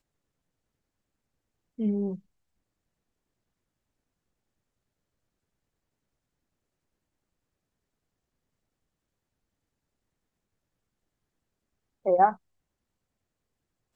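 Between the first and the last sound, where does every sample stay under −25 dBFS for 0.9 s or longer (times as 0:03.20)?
0:02.08–0:12.07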